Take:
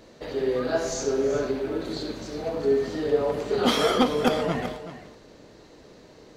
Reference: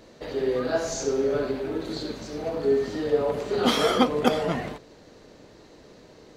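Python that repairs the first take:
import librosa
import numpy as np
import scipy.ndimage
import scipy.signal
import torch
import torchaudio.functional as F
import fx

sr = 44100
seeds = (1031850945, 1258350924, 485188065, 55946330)

y = fx.fix_declip(x, sr, threshold_db=-10.5)
y = fx.fix_echo_inverse(y, sr, delay_ms=379, level_db=-13.0)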